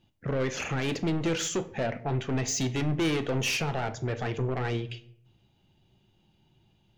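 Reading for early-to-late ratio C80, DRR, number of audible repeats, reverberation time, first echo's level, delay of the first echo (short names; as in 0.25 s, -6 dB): 19.5 dB, 10.0 dB, none, 0.75 s, none, none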